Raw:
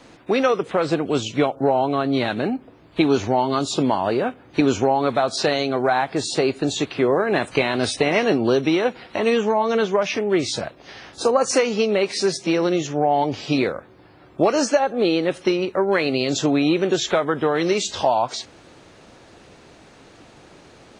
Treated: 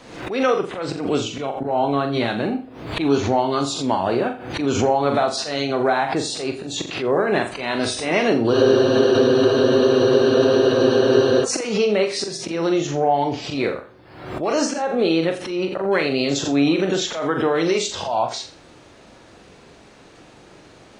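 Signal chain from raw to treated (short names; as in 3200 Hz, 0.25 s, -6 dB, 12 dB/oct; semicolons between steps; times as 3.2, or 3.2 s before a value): auto swell 0.139 s; on a send: flutter echo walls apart 7.3 m, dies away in 0.35 s; on the sum: flange 0.11 Hz, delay 1.7 ms, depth 8 ms, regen -86%; spectral freeze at 8.54, 2.89 s; backwards sustainer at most 68 dB/s; gain +4 dB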